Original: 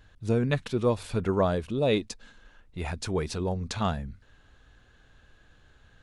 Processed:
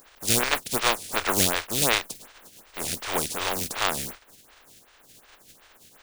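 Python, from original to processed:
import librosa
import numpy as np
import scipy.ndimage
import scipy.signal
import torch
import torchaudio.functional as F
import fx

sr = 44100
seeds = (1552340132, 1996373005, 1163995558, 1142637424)

y = fx.spec_flatten(x, sr, power=0.19)
y = fx.stagger_phaser(y, sr, hz=2.7)
y = y * 10.0 ** (5.5 / 20.0)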